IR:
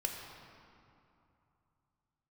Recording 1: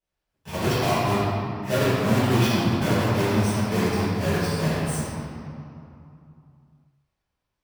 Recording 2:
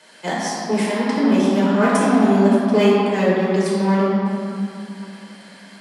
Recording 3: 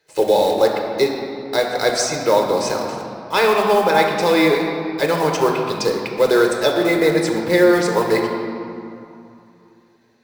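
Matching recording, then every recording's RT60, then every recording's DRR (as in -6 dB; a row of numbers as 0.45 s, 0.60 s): 3; 2.8 s, 2.8 s, 2.8 s; -15.0 dB, -7.5 dB, 1.0 dB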